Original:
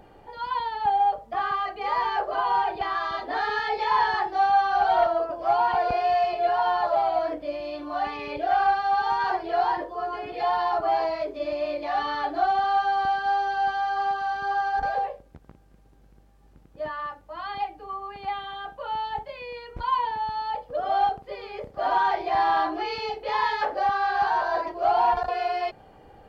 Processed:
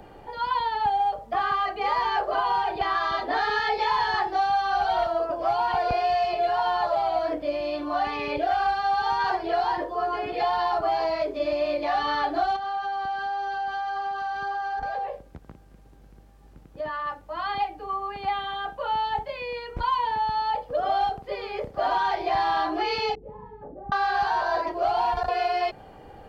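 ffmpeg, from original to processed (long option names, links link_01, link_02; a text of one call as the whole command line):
ffmpeg -i in.wav -filter_complex "[0:a]asettb=1/sr,asplit=3[link_01][link_02][link_03];[link_01]atrim=end=12.564[link_04];[link_02]atrim=start=12.56:end=17.07,asetpts=PTS-STARTPTS,afade=type=in:duration=0.004:curve=qsin,afade=type=out:start_time=4.506:duration=0.004:curve=qsin,acompressor=threshold=-32dB:ratio=5:attack=3.2:release=140:knee=1:detection=peak[link_05];[link_03]atrim=start=17.066[link_06];[link_04][link_05]acrossfade=duration=0.004:curve1=hsin:curve2=qsin[link_07];[link_07][link_06]acrossfade=duration=0.004:curve1=qsin:curve2=hsin,asettb=1/sr,asplit=3[link_08][link_09][link_10];[link_08]atrim=end=23.154[link_11];[link_09]atrim=start=23.15:end=23.92,asetpts=PTS-STARTPTS,afade=type=in:duration=0.004:curve=qsin,afade=type=out:start_time=0.766:duration=0.004:curve=qsin,lowpass=frequency=200:width_type=q:width=1.6[link_12];[link_10]atrim=start=23.916[link_13];[link_11][link_12]acrossfade=duration=0.004:curve1=hsin:curve2=qsin[link_14];[link_14][link_13]acrossfade=duration=0.004:curve1=qsin:curve2=hsin,acrossover=split=170|3000[link_15][link_16][link_17];[link_16]acompressor=threshold=-26dB:ratio=6[link_18];[link_15][link_18][link_17]amix=inputs=3:normalize=0,volume=4.5dB" out.wav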